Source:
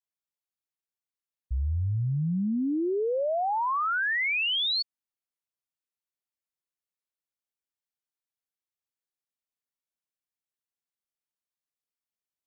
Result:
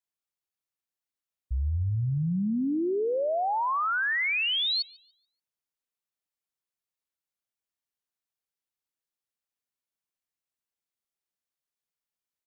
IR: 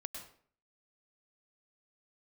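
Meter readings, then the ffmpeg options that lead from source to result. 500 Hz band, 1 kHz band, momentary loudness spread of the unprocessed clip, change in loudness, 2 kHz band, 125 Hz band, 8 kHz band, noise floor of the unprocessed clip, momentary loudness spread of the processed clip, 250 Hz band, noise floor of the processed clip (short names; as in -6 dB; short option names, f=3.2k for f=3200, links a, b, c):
0.0 dB, 0.0 dB, 6 LU, 0.0 dB, 0.0 dB, 0.0 dB, n/a, under -85 dBFS, 6 LU, 0.0 dB, under -85 dBFS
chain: -filter_complex "[0:a]asplit=2[a][b];[b]adelay=144,lowpass=f=2.9k:p=1,volume=-20dB,asplit=2[c][d];[d]adelay=144,lowpass=f=2.9k:p=1,volume=0.49,asplit=2[e][f];[f]adelay=144,lowpass=f=2.9k:p=1,volume=0.49,asplit=2[g][h];[h]adelay=144,lowpass=f=2.9k:p=1,volume=0.49[i];[a][c][e][g][i]amix=inputs=5:normalize=0"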